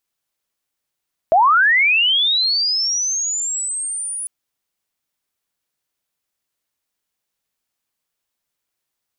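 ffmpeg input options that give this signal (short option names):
-f lavfi -i "aevalsrc='pow(10,(-9-14.5*t/2.95)/20)*sin(2*PI*(620*t+9280*t*t/(2*2.95)))':d=2.95:s=44100"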